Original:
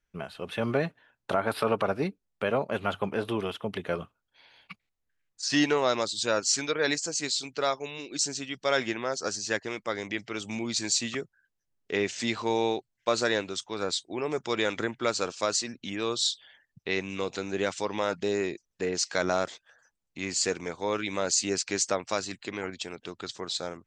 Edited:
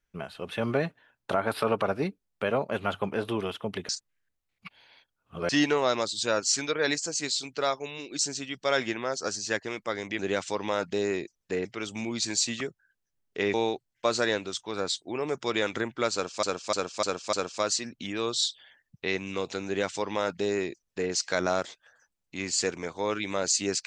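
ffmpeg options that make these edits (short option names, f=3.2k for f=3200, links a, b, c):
-filter_complex "[0:a]asplit=10[a][b][c][d][e][f][g][h][i][j];[a]atrim=end=3.892[k];[b]atrim=start=3.888:end=5.492,asetpts=PTS-STARTPTS,areverse[l];[c]atrim=start=5.488:end=10.192[m];[d]atrim=start=17.488:end=18.952[n];[e]atrim=start=10.188:end=12.082[o];[f]atrim=start=12.568:end=15.462[p];[g]atrim=start=15.158:end=15.462[q];[h]atrim=start=15.158:end=15.462[r];[i]atrim=start=15.158:end=15.462[s];[j]atrim=start=15.158[t];[k][l]acrossfade=d=0.004:c1=hsin:c2=hsin[u];[u][m]acrossfade=d=0.004:c1=hsin:c2=hsin[v];[v][n]acrossfade=d=0.004:c1=hsin:c2=hsin[w];[w][o]acrossfade=d=0.004:c1=hsin:c2=hsin[x];[x][p]acrossfade=d=0.004:c1=hsin:c2=hsin[y];[y][q]acrossfade=d=0.004:c1=hsin:c2=hsin[z];[z][r]acrossfade=d=0.004:c1=hsin:c2=hsin[aa];[aa][s]acrossfade=d=0.004:c1=hsin:c2=hsin[ab];[ab][t]acrossfade=d=0.004:c1=hsin:c2=hsin"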